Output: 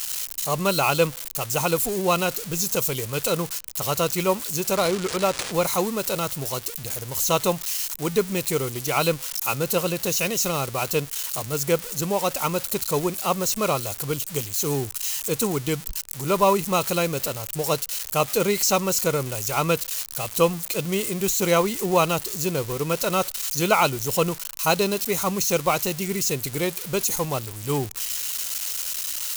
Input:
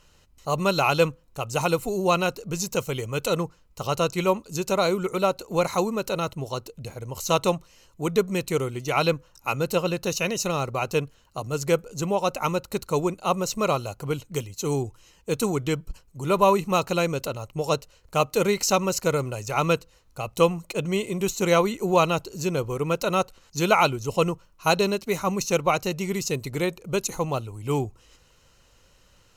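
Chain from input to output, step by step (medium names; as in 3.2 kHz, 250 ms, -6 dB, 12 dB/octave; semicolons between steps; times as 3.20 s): zero-crossing glitches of -19.5 dBFS; 4.76–5.52 s: careless resampling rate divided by 3×, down none, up hold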